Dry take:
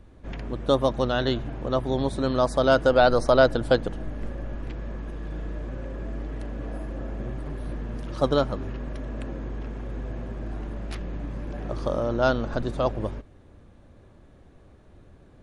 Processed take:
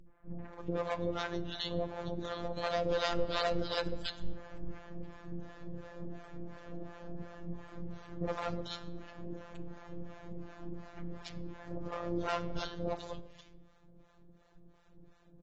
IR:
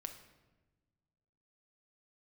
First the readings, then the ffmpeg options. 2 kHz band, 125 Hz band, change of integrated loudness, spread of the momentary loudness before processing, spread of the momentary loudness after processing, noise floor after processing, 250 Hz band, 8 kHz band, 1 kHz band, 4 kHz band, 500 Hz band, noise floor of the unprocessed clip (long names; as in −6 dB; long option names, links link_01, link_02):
−12.0 dB, −13.0 dB, −13.0 dB, 16 LU, 15 LU, −62 dBFS, −12.0 dB, can't be measured, −11.5 dB, −6.5 dB, −14.0 dB, −52 dBFS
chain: -filter_complex "[0:a]adynamicequalizer=threshold=0.00447:dfrequency=170:dqfactor=3.6:tfrequency=170:tqfactor=3.6:attack=5:release=100:ratio=0.375:range=2.5:mode=cutabove:tftype=bell,acrossover=split=430|2100[link_01][link_02][link_03];[link_02]adelay=60[link_04];[link_03]adelay=340[link_05];[link_01][link_04][link_05]amix=inputs=3:normalize=0,acrossover=split=2700[link_06][link_07];[link_06]asoftclip=type=hard:threshold=-23dB[link_08];[link_08][link_07]amix=inputs=2:normalize=0,acrossover=split=590[link_09][link_10];[link_09]aeval=exprs='val(0)*(1-1/2+1/2*cos(2*PI*2.8*n/s))':channel_layout=same[link_11];[link_10]aeval=exprs='val(0)*(1-1/2-1/2*cos(2*PI*2.8*n/s))':channel_layout=same[link_12];[link_11][link_12]amix=inputs=2:normalize=0,asplit=2[link_13][link_14];[1:a]atrim=start_sample=2205[link_15];[link_14][link_15]afir=irnorm=-1:irlink=0,volume=-1dB[link_16];[link_13][link_16]amix=inputs=2:normalize=0,afftfilt=real='hypot(re,im)*cos(PI*b)':imag='0':win_size=1024:overlap=0.75,volume=-3dB" -ar 22050 -c:a aac -b:a 24k